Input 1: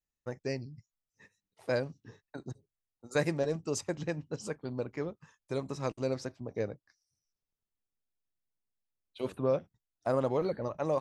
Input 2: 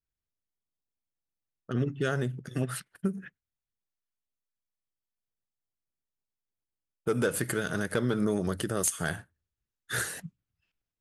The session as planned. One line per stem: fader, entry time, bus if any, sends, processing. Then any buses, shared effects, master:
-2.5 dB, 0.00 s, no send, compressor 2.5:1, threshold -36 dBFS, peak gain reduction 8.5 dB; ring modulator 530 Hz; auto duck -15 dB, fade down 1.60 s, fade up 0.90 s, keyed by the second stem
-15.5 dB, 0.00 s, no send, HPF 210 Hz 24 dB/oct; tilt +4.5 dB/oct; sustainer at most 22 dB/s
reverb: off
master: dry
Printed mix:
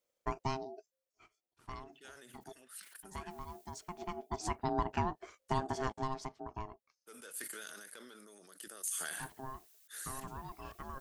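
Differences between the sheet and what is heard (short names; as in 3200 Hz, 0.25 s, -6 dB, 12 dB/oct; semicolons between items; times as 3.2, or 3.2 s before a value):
stem 1 -2.5 dB -> +9.0 dB; stem 2 -15.5 dB -> -25.0 dB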